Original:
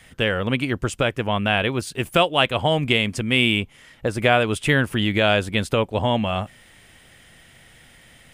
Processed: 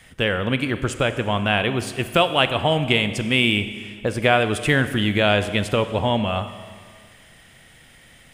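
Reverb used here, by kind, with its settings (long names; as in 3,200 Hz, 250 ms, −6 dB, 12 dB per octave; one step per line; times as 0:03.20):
four-comb reverb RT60 1.9 s, combs from 30 ms, DRR 10.5 dB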